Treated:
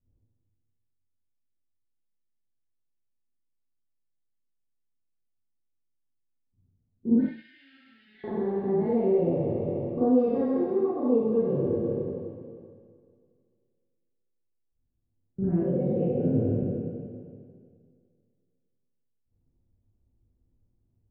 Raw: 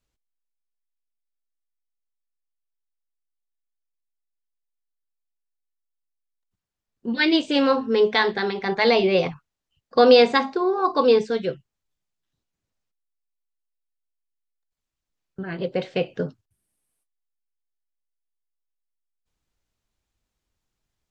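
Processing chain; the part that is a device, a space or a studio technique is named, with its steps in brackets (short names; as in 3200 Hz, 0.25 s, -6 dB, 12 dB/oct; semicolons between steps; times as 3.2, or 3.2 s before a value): spectral trails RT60 2.12 s; 7.21–8.24 elliptic high-pass 1700 Hz, stop band 40 dB; television next door (compressor 3:1, threshold -26 dBFS, peak gain reduction 14 dB; LPF 260 Hz 12 dB/oct; reverb RT60 0.35 s, pre-delay 36 ms, DRR -7 dB); gain +2 dB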